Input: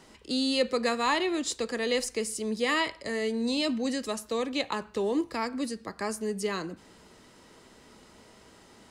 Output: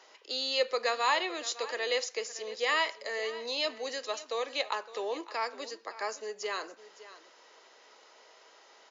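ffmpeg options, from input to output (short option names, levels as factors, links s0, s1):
-filter_complex "[0:a]highpass=f=480:w=0.5412,highpass=f=480:w=1.3066,asplit=2[s0][s1];[s1]aecho=0:1:561:0.15[s2];[s0][s2]amix=inputs=2:normalize=0" -ar 16000 -c:a libmp3lame -b:a 56k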